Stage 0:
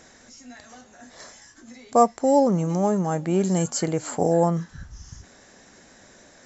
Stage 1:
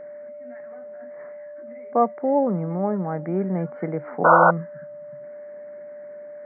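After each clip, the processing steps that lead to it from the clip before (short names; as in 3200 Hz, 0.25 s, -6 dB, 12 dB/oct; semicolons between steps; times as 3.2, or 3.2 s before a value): Chebyshev band-pass 140–2100 Hz, order 5; whine 590 Hz -34 dBFS; painted sound noise, 4.24–4.51, 480–1500 Hz -12 dBFS; gain -2 dB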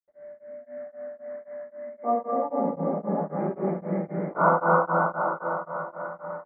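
reverb RT60 5.1 s, pre-delay 77 ms; beating tremolo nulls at 3.8 Hz; gain -5.5 dB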